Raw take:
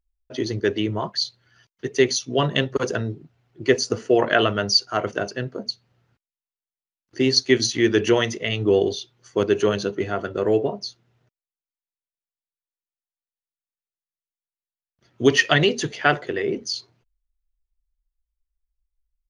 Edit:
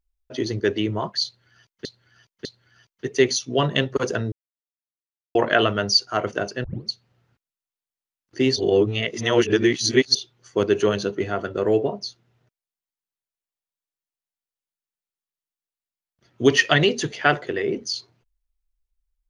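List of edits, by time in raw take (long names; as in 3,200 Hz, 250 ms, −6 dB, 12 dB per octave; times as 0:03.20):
0:01.25–0:01.85: repeat, 3 plays
0:03.12–0:04.15: silence
0:05.44: tape start 0.25 s
0:07.36–0:08.95: reverse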